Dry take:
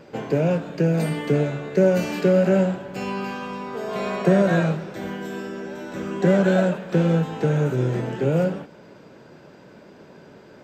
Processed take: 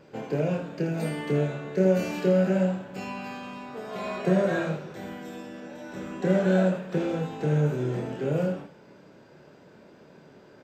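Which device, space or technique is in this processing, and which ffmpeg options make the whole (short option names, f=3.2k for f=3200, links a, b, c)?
slapback doubling: -filter_complex "[0:a]asplit=3[a][b][c];[b]adelay=27,volume=-4dB[d];[c]adelay=80,volume=-8dB[e];[a][d][e]amix=inputs=3:normalize=0,volume=-7.5dB"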